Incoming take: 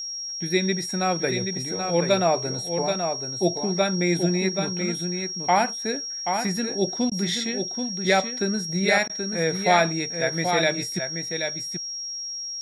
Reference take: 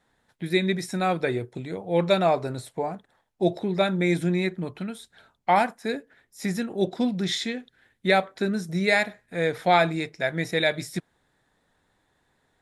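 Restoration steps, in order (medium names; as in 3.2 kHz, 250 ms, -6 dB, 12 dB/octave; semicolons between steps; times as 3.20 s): band-stop 5.6 kHz, Q 30; interpolate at 7.10/9.08 s, 14 ms; inverse comb 780 ms -6 dB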